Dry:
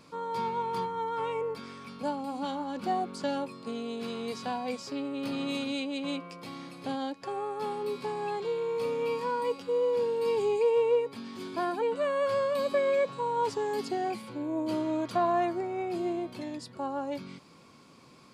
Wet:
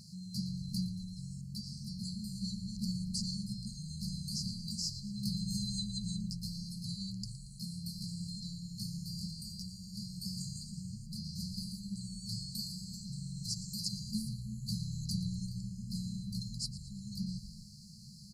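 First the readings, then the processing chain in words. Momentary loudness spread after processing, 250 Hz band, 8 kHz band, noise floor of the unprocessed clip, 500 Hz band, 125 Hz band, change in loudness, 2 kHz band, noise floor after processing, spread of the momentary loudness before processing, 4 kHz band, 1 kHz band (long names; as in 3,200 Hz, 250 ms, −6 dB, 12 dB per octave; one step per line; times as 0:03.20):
7 LU, −4.5 dB, can't be measured, −55 dBFS, below −40 dB, +9.5 dB, −8.5 dB, below −40 dB, −50 dBFS, 10 LU, +3.0 dB, below −40 dB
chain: echo with shifted repeats 115 ms, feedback 55%, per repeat −77 Hz, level −15 dB
brick-wall band-stop 220–4,000 Hz
level +8 dB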